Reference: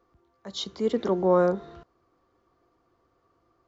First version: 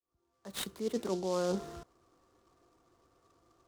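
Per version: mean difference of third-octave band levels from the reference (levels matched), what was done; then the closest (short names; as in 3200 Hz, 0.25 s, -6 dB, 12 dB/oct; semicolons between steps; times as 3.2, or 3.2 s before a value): 9.0 dB: opening faded in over 1.03 s; reverse; compressor 6:1, threshold -30 dBFS, peak gain reduction 13.5 dB; reverse; noise-modulated delay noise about 4800 Hz, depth 0.045 ms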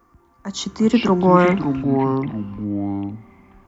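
4.5 dB: tone controls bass +9 dB, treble +13 dB; echoes that change speed 0.198 s, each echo -5 st, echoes 2, each echo -6 dB; graphic EQ 125/250/500/1000/2000/4000 Hz -3/+7/-5/+9/+7/-9 dB; gain +3.5 dB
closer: second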